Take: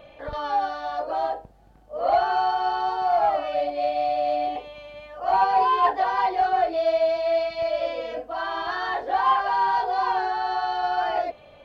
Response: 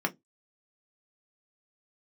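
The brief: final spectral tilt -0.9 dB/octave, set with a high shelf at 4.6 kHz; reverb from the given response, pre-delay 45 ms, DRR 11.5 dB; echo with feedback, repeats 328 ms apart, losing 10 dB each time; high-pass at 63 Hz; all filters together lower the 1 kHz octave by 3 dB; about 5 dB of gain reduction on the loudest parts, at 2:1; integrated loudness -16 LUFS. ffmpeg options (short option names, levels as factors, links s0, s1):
-filter_complex "[0:a]highpass=63,equalizer=f=1000:t=o:g=-4,highshelf=f=4600:g=-5,acompressor=threshold=0.0398:ratio=2,aecho=1:1:328|656|984|1312:0.316|0.101|0.0324|0.0104,asplit=2[s0][s1];[1:a]atrim=start_sample=2205,adelay=45[s2];[s1][s2]afir=irnorm=-1:irlink=0,volume=0.106[s3];[s0][s3]amix=inputs=2:normalize=0,volume=4.73"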